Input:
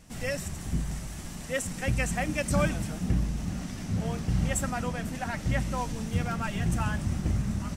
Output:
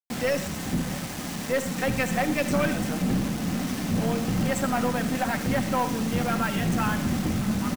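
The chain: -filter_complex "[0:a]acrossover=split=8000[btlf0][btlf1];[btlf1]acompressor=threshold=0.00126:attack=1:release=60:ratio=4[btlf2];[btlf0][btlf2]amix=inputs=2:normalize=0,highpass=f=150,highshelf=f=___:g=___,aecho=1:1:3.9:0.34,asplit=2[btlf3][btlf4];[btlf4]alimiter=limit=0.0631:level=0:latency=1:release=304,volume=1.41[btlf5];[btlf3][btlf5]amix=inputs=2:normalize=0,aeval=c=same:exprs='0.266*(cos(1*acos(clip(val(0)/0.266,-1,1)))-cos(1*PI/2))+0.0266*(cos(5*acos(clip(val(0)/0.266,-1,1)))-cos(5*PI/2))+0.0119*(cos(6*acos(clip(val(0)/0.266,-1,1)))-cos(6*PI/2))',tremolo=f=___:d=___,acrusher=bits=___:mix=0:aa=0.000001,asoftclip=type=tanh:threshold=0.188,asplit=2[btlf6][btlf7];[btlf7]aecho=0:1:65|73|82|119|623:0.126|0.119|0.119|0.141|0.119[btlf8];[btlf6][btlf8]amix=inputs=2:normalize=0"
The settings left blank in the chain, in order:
3700, -7, 140, 0.333, 5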